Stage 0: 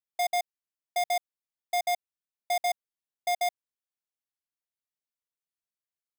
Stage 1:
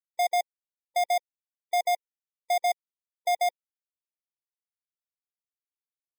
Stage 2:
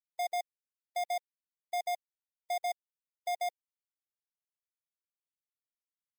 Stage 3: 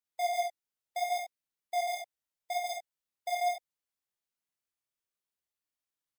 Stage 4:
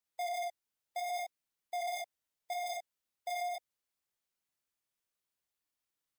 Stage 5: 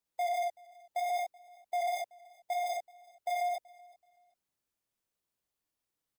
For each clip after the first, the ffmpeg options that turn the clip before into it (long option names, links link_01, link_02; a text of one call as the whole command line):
ffmpeg -i in.wav -af "afftfilt=real='re*gte(hypot(re,im),0.00708)':imag='im*gte(hypot(re,im),0.00708)':win_size=1024:overlap=0.75,lowshelf=frequency=440:gain=11" out.wav
ffmpeg -i in.wav -af "acrusher=bits=10:mix=0:aa=0.000001,volume=-8.5dB" out.wav
ffmpeg -i in.wav -filter_complex "[0:a]flanger=delay=17.5:depth=7.8:speed=0.73,asplit=2[link_01][link_02];[link_02]aecho=0:1:52|68:0.596|0.473[link_03];[link_01][link_03]amix=inputs=2:normalize=0,volume=4dB" out.wav
ffmpeg -i in.wav -af "alimiter=level_in=6.5dB:limit=-24dB:level=0:latency=1:release=26,volume=-6.5dB,asoftclip=type=tanh:threshold=-33dB,volume=2dB" out.wav
ffmpeg -i in.wav -filter_complex "[0:a]asplit=2[link_01][link_02];[link_02]adynamicsmooth=sensitivity=5:basefreq=1200,volume=-0.5dB[link_03];[link_01][link_03]amix=inputs=2:normalize=0,aecho=1:1:379|758:0.0631|0.0158" out.wav